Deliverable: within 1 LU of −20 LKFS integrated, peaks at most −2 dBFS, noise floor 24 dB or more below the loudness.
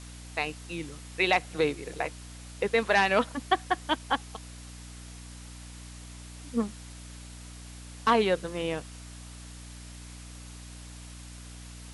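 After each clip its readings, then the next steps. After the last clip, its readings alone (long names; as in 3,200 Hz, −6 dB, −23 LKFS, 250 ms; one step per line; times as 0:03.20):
mains hum 60 Hz; hum harmonics up to 300 Hz; level of the hum −43 dBFS; background noise floor −45 dBFS; target noise floor −53 dBFS; integrated loudness −28.5 LKFS; sample peak −10.0 dBFS; target loudness −20.0 LKFS
→ hum removal 60 Hz, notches 5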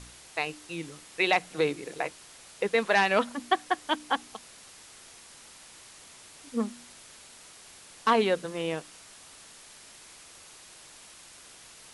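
mains hum none found; background noise floor −51 dBFS; target noise floor −53 dBFS
→ broadband denoise 6 dB, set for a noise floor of −51 dBFS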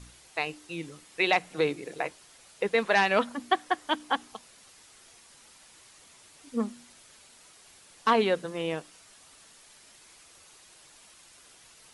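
background noise floor −56 dBFS; integrated loudness −29.0 LKFS; sample peak −10.0 dBFS; target loudness −20.0 LKFS
→ level +9 dB
brickwall limiter −2 dBFS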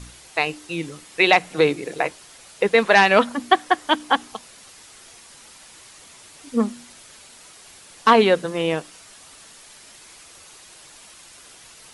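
integrated loudness −20.0 LKFS; sample peak −2.0 dBFS; background noise floor −47 dBFS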